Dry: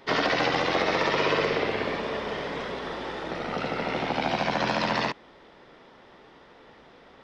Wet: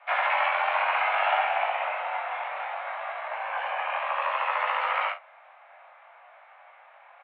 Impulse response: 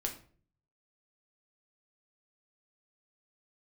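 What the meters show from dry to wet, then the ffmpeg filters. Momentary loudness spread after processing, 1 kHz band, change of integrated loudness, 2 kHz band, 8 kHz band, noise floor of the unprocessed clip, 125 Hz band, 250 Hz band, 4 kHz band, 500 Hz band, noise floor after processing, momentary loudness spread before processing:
9 LU, +3.5 dB, 0.0 dB, +1.0 dB, can't be measured, −53 dBFS, below −40 dB, below −40 dB, −7.0 dB, −6.0 dB, −54 dBFS, 10 LU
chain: -af "flanger=delay=18.5:depth=4.7:speed=0.62,highpass=frequency=290:width_type=q:width=0.5412,highpass=frequency=290:width_type=q:width=1.307,lowpass=frequency=2500:width_type=q:width=0.5176,lowpass=frequency=2500:width_type=q:width=0.7071,lowpass=frequency=2500:width_type=q:width=1.932,afreqshift=300,aecho=1:1:36|49:0.266|0.2,volume=3dB"

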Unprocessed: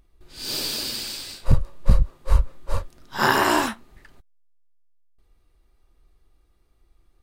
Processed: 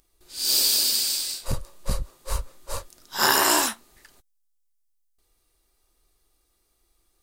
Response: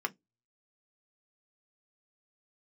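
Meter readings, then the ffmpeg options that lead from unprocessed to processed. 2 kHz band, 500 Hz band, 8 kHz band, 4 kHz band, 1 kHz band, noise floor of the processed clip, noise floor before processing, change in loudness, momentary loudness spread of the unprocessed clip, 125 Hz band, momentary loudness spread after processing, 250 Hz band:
−2.0 dB, −3.5 dB, +10.5 dB, +5.5 dB, −2.5 dB, −70 dBFS, −63 dBFS, +2.0 dB, 14 LU, −11.0 dB, 19 LU, −6.0 dB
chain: -af "bass=frequency=250:gain=-9,treble=frequency=4000:gain=14,volume=-2.5dB"

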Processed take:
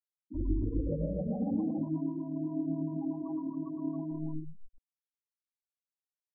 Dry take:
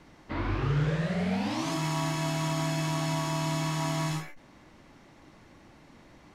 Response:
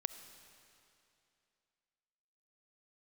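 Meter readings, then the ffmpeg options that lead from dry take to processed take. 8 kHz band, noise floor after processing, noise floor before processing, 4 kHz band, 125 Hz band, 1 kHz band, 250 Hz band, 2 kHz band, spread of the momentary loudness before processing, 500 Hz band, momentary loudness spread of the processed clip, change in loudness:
below −40 dB, below −85 dBFS, −56 dBFS, below −40 dB, −9.0 dB, −17.5 dB, −0.5 dB, below −40 dB, 5 LU, −5.0 dB, 6 LU, −5.0 dB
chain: -filter_complex "[0:a]acrossover=split=650[link_01][link_02];[link_01]aeval=exprs='val(0)*(1-0.5/2+0.5/2*cos(2*PI*7.8*n/s))':channel_layout=same[link_03];[link_02]aeval=exprs='val(0)*(1-0.5/2-0.5/2*cos(2*PI*7.8*n/s))':channel_layout=same[link_04];[link_03][link_04]amix=inputs=2:normalize=0,afwtdn=0.00794,bandreject=frequency=50:width_type=h:width=6,bandreject=frequency=100:width_type=h:width=6,bandreject=frequency=150:width_type=h:width=6,bandreject=frequency=200:width_type=h:width=6,bandreject=frequency=250:width_type=h:width=6,bandreject=frequency=300:width_type=h:width=6,flanger=delay=17.5:depth=2.4:speed=1.4,acrossover=split=770|2700[link_05][link_06][link_07];[link_06]acompressor=threshold=-54dB:ratio=12[link_08];[link_05][link_08][link_07]amix=inputs=3:normalize=0[link_09];[1:a]atrim=start_sample=2205,atrim=end_sample=6615[link_10];[link_09][link_10]afir=irnorm=-1:irlink=0,afftfilt=real='re*gte(hypot(re,im),0.0282)':imag='im*gte(hypot(re,im),0.0282)':win_size=1024:overlap=0.75,tiltshelf=frequency=1200:gain=4,aecho=1:1:113.7|274.1:0.398|0.631,areverse,acompressor=mode=upward:threshold=-59dB:ratio=2.5,areverse,aecho=1:1:3.7:0.95"

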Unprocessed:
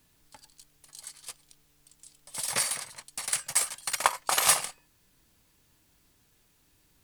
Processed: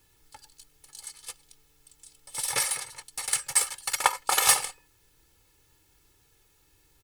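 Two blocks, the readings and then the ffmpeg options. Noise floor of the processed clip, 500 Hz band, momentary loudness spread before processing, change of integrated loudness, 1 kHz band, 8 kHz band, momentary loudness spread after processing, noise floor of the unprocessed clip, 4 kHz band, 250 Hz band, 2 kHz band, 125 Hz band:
−65 dBFS, 0.0 dB, 21 LU, +2.0 dB, +1.5 dB, +2.0 dB, 21 LU, −67 dBFS, +1.5 dB, can't be measured, +2.0 dB, 0.0 dB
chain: -af "aecho=1:1:2.3:0.7"

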